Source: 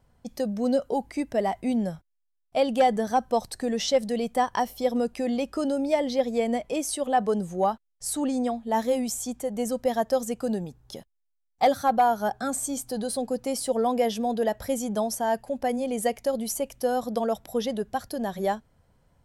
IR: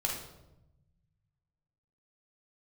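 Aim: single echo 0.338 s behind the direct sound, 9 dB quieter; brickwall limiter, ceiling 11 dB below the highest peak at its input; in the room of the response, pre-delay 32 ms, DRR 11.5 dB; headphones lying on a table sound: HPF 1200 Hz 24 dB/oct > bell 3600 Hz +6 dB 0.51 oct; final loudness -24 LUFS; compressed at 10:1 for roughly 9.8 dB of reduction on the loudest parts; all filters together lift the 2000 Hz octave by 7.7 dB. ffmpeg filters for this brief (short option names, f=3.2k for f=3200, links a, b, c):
-filter_complex "[0:a]equalizer=f=2k:t=o:g=9,acompressor=threshold=-25dB:ratio=10,alimiter=level_in=1.5dB:limit=-24dB:level=0:latency=1,volume=-1.5dB,aecho=1:1:338:0.355,asplit=2[a][b];[1:a]atrim=start_sample=2205,adelay=32[c];[b][c]afir=irnorm=-1:irlink=0,volume=-16dB[d];[a][d]amix=inputs=2:normalize=0,highpass=f=1.2k:w=0.5412,highpass=f=1.2k:w=1.3066,equalizer=f=3.6k:t=o:w=0.51:g=6,volume=15dB"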